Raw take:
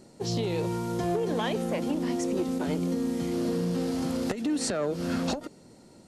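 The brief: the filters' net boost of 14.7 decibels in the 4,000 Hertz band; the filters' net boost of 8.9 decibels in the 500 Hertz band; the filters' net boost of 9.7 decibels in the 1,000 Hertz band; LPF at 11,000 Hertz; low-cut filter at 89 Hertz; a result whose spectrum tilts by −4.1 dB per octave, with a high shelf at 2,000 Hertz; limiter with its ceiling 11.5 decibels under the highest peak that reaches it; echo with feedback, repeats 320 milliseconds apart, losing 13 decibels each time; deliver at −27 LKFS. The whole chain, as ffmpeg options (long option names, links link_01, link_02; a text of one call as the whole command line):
ffmpeg -i in.wav -af "highpass=89,lowpass=11000,equalizer=frequency=500:width_type=o:gain=8.5,equalizer=frequency=1000:width_type=o:gain=7,highshelf=frequency=2000:gain=9,equalizer=frequency=4000:width_type=o:gain=9,alimiter=limit=-17dB:level=0:latency=1,aecho=1:1:320|640|960:0.224|0.0493|0.0108,volume=-1.5dB" out.wav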